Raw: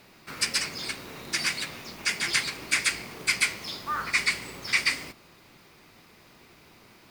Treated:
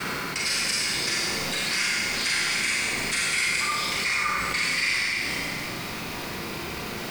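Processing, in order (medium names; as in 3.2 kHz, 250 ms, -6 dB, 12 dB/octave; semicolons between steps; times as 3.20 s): slices played last to first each 89 ms, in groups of 4; Schroeder reverb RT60 1.3 s, combs from 32 ms, DRR -6.5 dB; level flattener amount 70%; trim -8 dB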